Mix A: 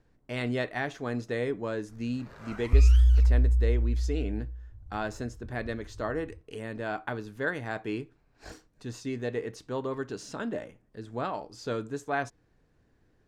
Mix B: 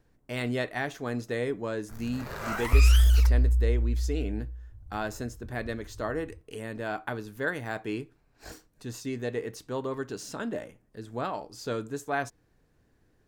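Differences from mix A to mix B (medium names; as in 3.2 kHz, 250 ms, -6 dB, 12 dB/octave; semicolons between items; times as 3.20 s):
first sound +12.0 dB; master: remove distance through air 51 m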